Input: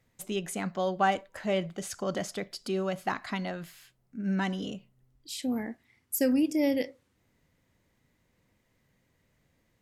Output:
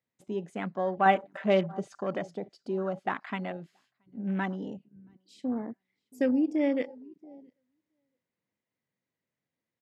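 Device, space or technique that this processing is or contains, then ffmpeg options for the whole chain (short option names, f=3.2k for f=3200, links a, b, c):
over-cleaned archive recording: -filter_complex "[0:a]asettb=1/sr,asplit=3[a][b][c];[a]atrim=end=1.054[d];[b]atrim=start=1.05:end=2.02,asetpts=PTS-STARTPTS,afade=t=in:d=0.004:c=qsin,afade=t=out:st=0.966:d=0.004:c=qsin,aecho=1:1:5.1:0.88,atrim=end_sample=42777[e];[c]atrim=start=2.016[f];[d][e]acrossfade=d=0.004:c1=hsin:c2=qsin[g];[g][f]acrossfade=d=0.004:c1=qsin:c2=hsin,highpass=160,lowpass=6.4k,asplit=2[h][i];[i]adelay=676,lowpass=f=2.1k:p=1,volume=-22dB,asplit=2[j][k];[k]adelay=676,lowpass=f=2.1k:p=1,volume=0.18[l];[h][j][l]amix=inputs=3:normalize=0,afwtdn=0.01"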